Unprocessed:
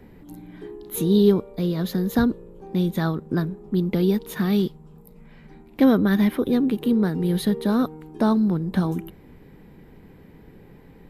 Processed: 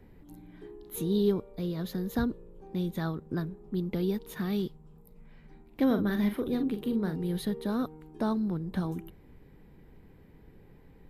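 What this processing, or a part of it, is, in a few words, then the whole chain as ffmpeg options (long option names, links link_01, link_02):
low shelf boost with a cut just above: -filter_complex "[0:a]asettb=1/sr,asplit=3[link_01][link_02][link_03];[link_01]atrim=end=5.864[link_04];[link_02]atrim=start=5.86:end=7.16,asetpts=PTS-STARTPTS,afade=type=in:duration=0.004:curve=qsin,afade=type=out:start_time=1.296:duration=0.004:curve=qsin,asplit=2[link_05][link_06];[link_06]adelay=44,volume=-8dB[link_07];[link_05][link_07]amix=inputs=2:normalize=0,atrim=end_sample=57330[link_08];[link_03]atrim=start=7.156[link_09];[link_04][link_08]acrossfade=duration=0.004:curve1=hsin:curve2=qsin[link_10];[link_10][link_09]acrossfade=duration=0.004:curve1=qsin:curve2=hsin,lowshelf=frequency=100:gain=7,equalizer=frequency=200:width_type=o:width=0.77:gain=-2.5,volume=-9dB"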